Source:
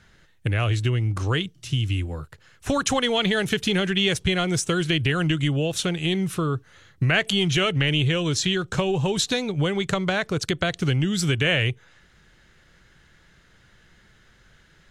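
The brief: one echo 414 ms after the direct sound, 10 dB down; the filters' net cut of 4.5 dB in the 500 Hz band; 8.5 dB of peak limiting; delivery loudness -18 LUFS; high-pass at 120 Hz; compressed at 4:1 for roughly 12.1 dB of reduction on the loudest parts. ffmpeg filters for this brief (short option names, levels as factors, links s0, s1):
-af "highpass=120,equalizer=f=500:t=o:g=-6,acompressor=threshold=0.02:ratio=4,alimiter=level_in=1.12:limit=0.0631:level=0:latency=1,volume=0.891,aecho=1:1:414:0.316,volume=7.94"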